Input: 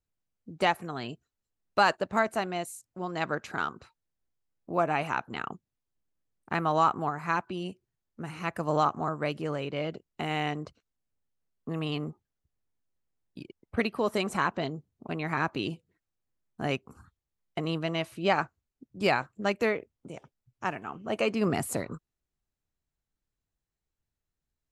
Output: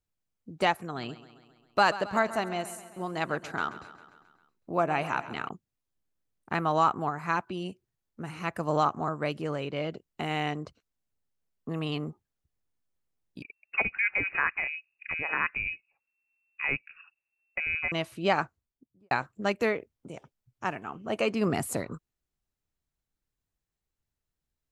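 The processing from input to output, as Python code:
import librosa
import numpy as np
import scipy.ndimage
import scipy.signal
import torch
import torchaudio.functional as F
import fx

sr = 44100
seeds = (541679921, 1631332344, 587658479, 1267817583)

y = fx.echo_feedback(x, sr, ms=134, feedback_pct=60, wet_db=-15, at=(0.82, 5.49))
y = fx.freq_invert(y, sr, carrier_hz=2700, at=(13.42, 17.92))
y = fx.studio_fade_out(y, sr, start_s=18.43, length_s=0.68)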